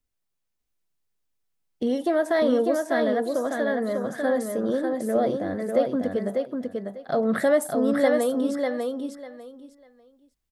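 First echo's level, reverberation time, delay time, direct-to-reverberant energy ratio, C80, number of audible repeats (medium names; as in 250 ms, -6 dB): -4.0 dB, no reverb, 597 ms, no reverb, no reverb, 3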